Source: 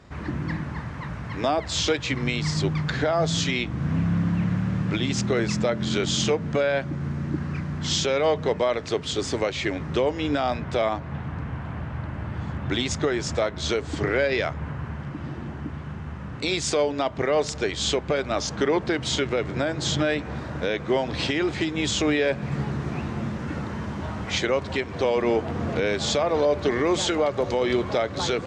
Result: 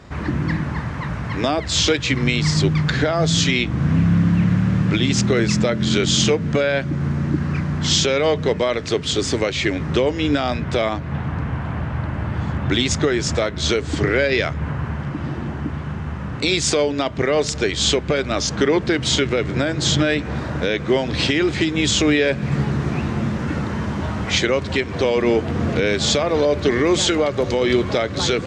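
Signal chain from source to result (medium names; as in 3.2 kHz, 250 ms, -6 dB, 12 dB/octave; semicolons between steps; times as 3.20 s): dynamic bell 810 Hz, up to -7 dB, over -37 dBFS, Q 0.99; trim +7.5 dB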